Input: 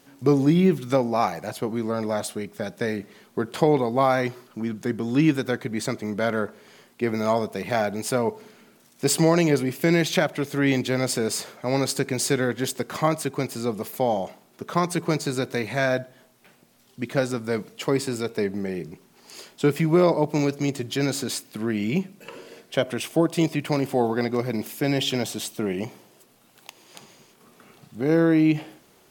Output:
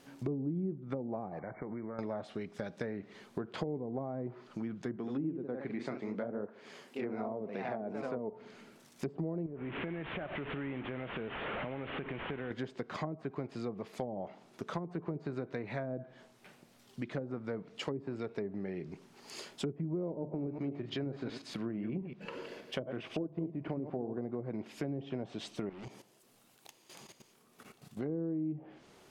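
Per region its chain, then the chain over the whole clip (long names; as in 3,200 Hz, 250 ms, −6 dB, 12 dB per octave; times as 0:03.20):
0:01.39–0:01.99: downward compressor, threshold −32 dBFS + linear-phase brick-wall low-pass 2,300 Hz
0:04.96–0:08.33: high-pass filter 170 Hz + delay with pitch and tempo change per echo 83 ms, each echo +1 semitone, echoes 2, each echo −6 dB
0:09.46–0:12.51: linear delta modulator 16 kbit/s, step −26.5 dBFS + downward compressor 3 to 1, threshold −30 dBFS
0:20.11–0:24.18: delay that plays each chunk backwards 119 ms, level −9 dB + parametric band 8,000 Hz −7.5 dB 0.97 octaves + mains-hum notches 50/100/150 Hz
0:25.69–0:27.99: gain into a clipping stage and back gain 34.5 dB + output level in coarse steps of 13 dB + high-shelf EQ 6,400 Hz +10 dB
whole clip: treble cut that deepens with the level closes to 440 Hz, closed at −18 dBFS; high-shelf EQ 8,600 Hz −8.5 dB; downward compressor 3 to 1, threshold −36 dBFS; level −2 dB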